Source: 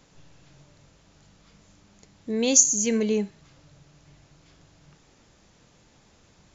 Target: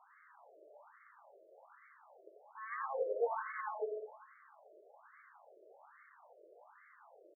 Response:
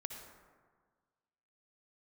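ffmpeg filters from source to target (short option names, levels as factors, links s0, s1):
-filter_complex "[0:a]aresample=11025,asoftclip=type=tanh:threshold=0.0422,aresample=44100,bandreject=f=50:t=h:w=6,bandreject=f=100:t=h:w=6,bandreject=f=150:t=h:w=6,bandreject=f=200:t=h:w=6,bandreject=f=250:t=h:w=6,bandreject=f=300:t=h:w=6,asplit=2[s0][s1];[s1]adelay=210,highpass=300,lowpass=3400,asoftclip=type=hard:threshold=0.0237,volume=0.316[s2];[s0][s2]amix=inputs=2:normalize=0,atempo=0.89,asplit=2[s3][s4];[1:a]atrim=start_sample=2205,lowshelf=f=300:g=-8.5,adelay=89[s5];[s4][s5]afir=irnorm=-1:irlink=0,volume=1.26[s6];[s3][s6]amix=inputs=2:normalize=0,afftfilt=real='re*between(b*sr/1024,460*pow(1600/460,0.5+0.5*sin(2*PI*1.2*pts/sr))/1.41,460*pow(1600/460,0.5+0.5*sin(2*PI*1.2*pts/sr))*1.41)':imag='im*between(b*sr/1024,460*pow(1600/460,0.5+0.5*sin(2*PI*1.2*pts/sr))/1.41,460*pow(1600/460,0.5+0.5*sin(2*PI*1.2*pts/sr))*1.41)':win_size=1024:overlap=0.75,volume=1.58"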